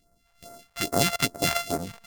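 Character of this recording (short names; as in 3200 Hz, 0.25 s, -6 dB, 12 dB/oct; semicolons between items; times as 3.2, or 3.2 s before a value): a buzz of ramps at a fixed pitch in blocks of 64 samples; phasing stages 2, 2.4 Hz, lowest notch 250–2900 Hz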